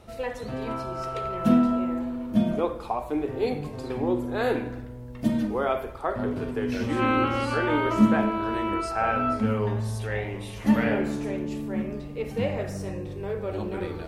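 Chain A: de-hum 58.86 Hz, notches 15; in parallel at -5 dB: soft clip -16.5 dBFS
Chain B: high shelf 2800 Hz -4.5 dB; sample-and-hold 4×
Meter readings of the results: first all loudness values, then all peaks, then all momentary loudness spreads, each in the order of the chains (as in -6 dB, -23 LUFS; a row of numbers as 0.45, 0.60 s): -24.0, -27.0 LUFS; -6.0, -8.0 dBFS; 10, 11 LU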